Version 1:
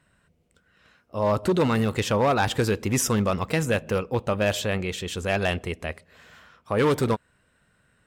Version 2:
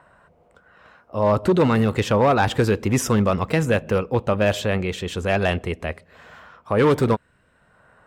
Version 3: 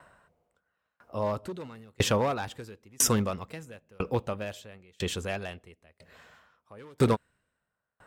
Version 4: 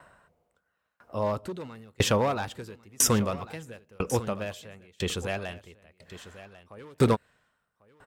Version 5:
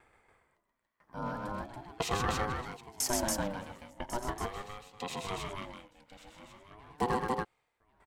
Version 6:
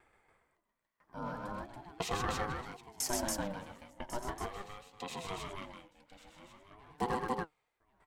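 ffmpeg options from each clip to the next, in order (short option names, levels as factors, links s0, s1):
-filter_complex "[0:a]highshelf=f=3400:g=-8,acrossover=split=710|1000[s0][s1][s2];[s1]acompressor=mode=upward:threshold=0.00631:ratio=2.5[s3];[s0][s3][s2]amix=inputs=3:normalize=0,volume=1.68"
-af "highshelf=f=3600:g=9,aeval=exprs='val(0)*pow(10,-36*if(lt(mod(1*n/s,1),2*abs(1)/1000),1-mod(1*n/s,1)/(2*abs(1)/1000),(mod(1*n/s,1)-2*abs(1)/1000)/(1-2*abs(1)/1000))/20)':c=same,volume=0.841"
-af "aecho=1:1:1096:0.168,volume=1.19"
-af "aecho=1:1:87.46|128.3|282.8:0.282|0.708|0.794,aeval=exprs='val(0)*sin(2*PI*510*n/s+510*0.25/0.41*sin(2*PI*0.41*n/s))':c=same,volume=0.447"
-af "flanger=delay=2.4:depth=4.4:regen=68:speed=1.8:shape=triangular,volume=1.12"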